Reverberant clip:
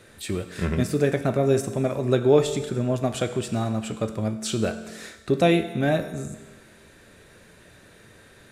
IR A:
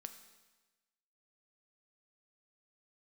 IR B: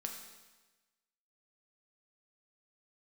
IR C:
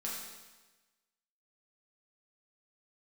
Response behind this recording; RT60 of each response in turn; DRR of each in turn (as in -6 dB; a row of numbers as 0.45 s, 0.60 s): A; 1.2 s, 1.2 s, 1.2 s; 7.5 dB, 2.0 dB, -5.0 dB